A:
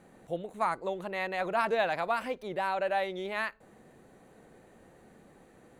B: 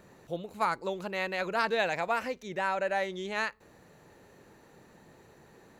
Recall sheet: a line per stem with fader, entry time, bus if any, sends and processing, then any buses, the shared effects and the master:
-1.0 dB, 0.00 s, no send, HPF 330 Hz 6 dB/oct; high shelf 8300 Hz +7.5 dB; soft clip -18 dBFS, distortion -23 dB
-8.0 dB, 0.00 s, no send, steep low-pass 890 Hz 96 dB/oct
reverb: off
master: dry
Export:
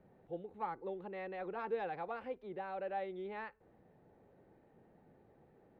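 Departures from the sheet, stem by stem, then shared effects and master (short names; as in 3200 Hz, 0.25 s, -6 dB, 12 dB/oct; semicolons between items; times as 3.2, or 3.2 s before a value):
stem A -1.0 dB -> -11.5 dB; master: extra air absorption 340 m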